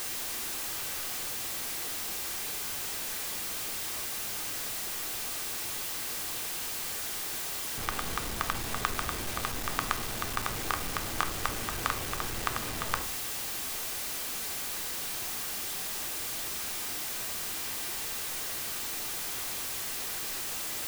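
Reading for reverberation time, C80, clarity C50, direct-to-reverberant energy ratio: 0.40 s, 20.0 dB, 14.5 dB, 7.5 dB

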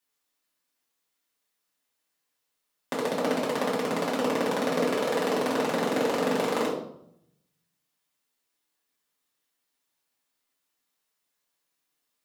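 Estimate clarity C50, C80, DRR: 4.5 dB, 8.0 dB, −7.0 dB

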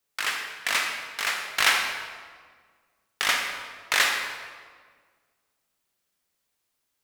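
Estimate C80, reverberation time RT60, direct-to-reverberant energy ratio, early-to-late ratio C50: 5.0 dB, 1.7 s, 2.0 dB, 3.5 dB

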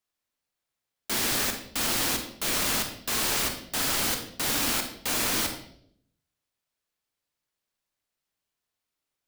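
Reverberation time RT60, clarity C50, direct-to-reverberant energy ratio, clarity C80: 0.65 s, 7.0 dB, 4.5 dB, 10.0 dB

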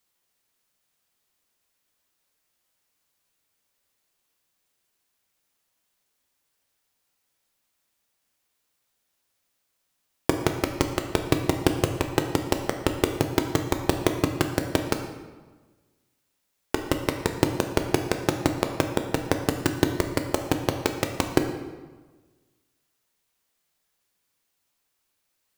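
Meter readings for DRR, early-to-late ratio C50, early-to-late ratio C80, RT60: 4.5 dB, 7.0 dB, 9.0 dB, 1.3 s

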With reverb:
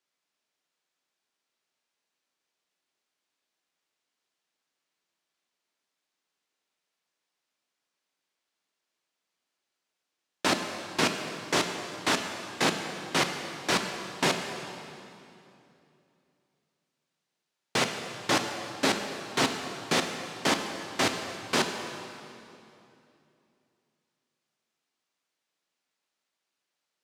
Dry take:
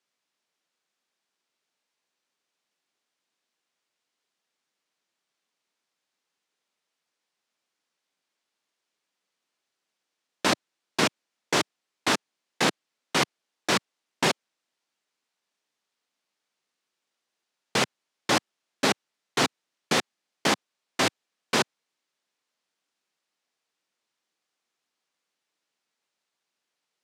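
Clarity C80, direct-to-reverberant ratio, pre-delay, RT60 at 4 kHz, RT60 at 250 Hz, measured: 6.5 dB, 4.5 dB, 3 ms, 2.3 s, 3.2 s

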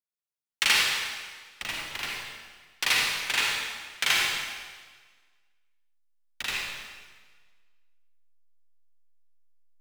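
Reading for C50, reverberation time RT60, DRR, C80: −2.0 dB, 1.5 s, −3.5 dB, 0.5 dB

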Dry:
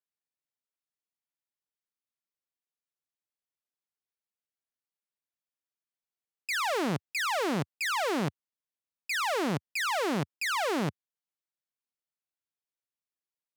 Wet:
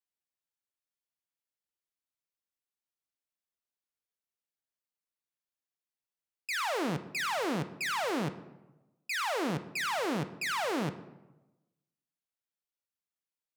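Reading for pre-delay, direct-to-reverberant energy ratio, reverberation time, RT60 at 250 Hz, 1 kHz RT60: 3 ms, 9.5 dB, 1.0 s, 1.2 s, 1.0 s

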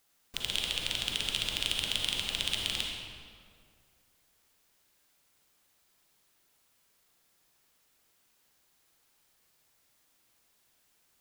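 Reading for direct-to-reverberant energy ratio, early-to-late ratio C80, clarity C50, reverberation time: 0.5 dB, 3.0 dB, 1.5 dB, 2.1 s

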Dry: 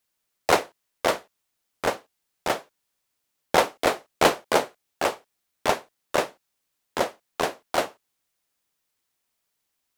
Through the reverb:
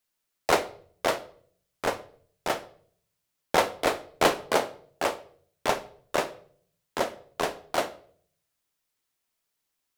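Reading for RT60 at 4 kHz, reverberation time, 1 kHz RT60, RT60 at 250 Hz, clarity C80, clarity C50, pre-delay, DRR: 0.45 s, 0.55 s, 0.45 s, 0.80 s, 20.5 dB, 17.0 dB, 3 ms, 11.5 dB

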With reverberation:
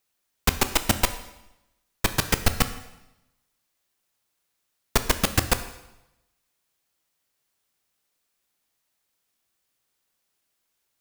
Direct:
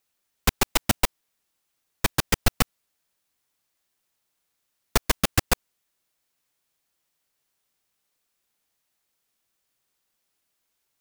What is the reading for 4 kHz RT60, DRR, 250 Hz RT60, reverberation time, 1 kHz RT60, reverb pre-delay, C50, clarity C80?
0.85 s, 9.5 dB, 0.95 s, 0.95 s, 0.95 s, 7 ms, 12.0 dB, 14.0 dB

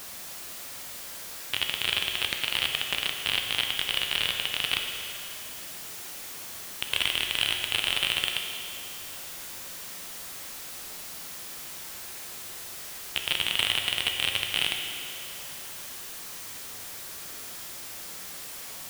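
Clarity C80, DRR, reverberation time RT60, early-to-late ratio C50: 5.5 dB, 3.0 dB, 2.6 s, 4.5 dB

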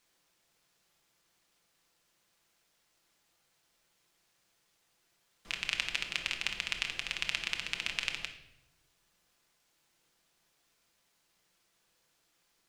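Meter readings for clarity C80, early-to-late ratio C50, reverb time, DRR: 12.0 dB, 9.0 dB, 0.85 s, 3.5 dB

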